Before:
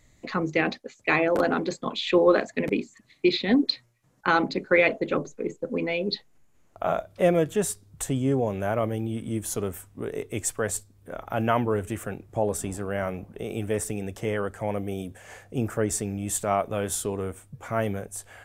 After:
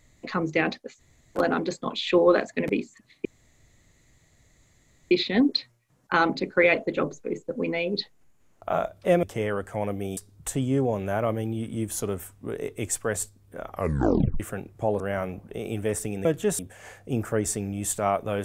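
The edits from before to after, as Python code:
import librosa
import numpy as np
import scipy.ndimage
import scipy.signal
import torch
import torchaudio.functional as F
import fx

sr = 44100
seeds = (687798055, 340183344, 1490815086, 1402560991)

y = fx.edit(x, sr, fx.room_tone_fill(start_s=0.99, length_s=0.38, crossfade_s=0.04),
    fx.insert_room_tone(at_s=3.25, length_s=1.86),
    fx.swap(start_s=7.37, length_s=0.34, other_s=14.1, other_length_s=0.94),
    fx.tape_stop(start_s=11.23, length_s=0.71),
    fx.cut(start_s=12.54, length_s=0.31), tone=tone)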